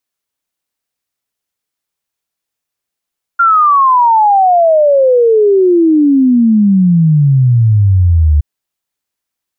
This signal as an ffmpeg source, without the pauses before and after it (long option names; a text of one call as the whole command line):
ffmpeg -f lavfi -i "aevalsrc='0.562*clip(min(t,5.02-t)/0.01,0,1)*sin(2*PI*1400*5.02/log(72/1400)*(exp(log(72/1400)*t/5.02)-1))':duration=5.02:sample_rate=44100" out.wav